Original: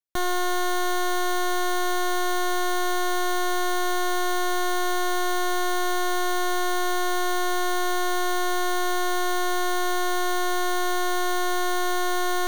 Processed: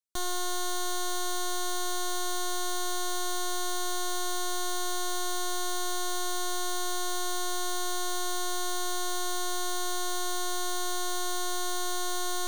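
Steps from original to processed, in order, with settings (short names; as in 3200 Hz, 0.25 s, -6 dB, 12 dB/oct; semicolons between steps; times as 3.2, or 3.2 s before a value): graphic EQ 125/500/2000/4000/8000 Hz -10/-7/-9/+4/+7 dB; gain -5 dB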